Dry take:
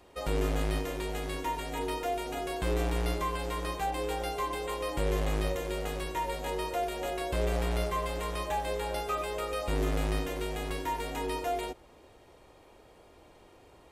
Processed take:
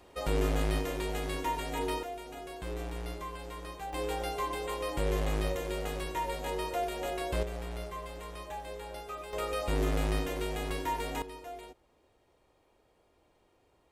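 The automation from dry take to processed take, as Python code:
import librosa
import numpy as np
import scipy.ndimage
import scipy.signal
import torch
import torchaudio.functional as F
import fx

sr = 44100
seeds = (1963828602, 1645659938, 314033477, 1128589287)

y = fx.gain(x, sr, db=fx.steps((0.0, 0.5), (2.03, -8.5), (3.93, -1.0), (7.43, -9.0), (9.33, 0.0), (11.22, -12.0)))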